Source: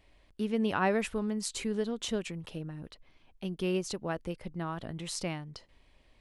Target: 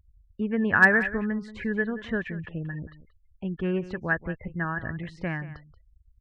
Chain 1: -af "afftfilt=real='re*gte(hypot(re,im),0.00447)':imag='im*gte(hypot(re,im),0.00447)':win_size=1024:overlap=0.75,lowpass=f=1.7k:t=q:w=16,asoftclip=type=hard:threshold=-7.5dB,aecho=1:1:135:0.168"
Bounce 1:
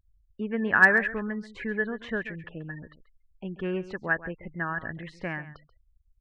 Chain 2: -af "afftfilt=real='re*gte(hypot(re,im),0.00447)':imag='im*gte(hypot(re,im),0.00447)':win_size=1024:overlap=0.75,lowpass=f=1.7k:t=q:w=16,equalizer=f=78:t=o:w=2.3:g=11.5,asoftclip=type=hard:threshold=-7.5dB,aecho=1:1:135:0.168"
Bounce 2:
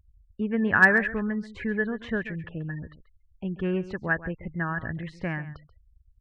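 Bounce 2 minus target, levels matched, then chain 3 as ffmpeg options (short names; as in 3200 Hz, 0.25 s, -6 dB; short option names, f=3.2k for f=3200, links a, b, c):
echo 46 ms early
-af "afftfilt=real='re*gte(hypot(re,im),0.00447)':imag='im*gte(hypot(re,im),0.00447)':win_size=1024:overlap=0.75,lowpass=f=1.7k:t=q:w=16,equalizer=f=78:t=o:w=2.3:g=11.5,asoftclip=type=hard:threshold=-7.5dB,aecho=1:1:181:0.168"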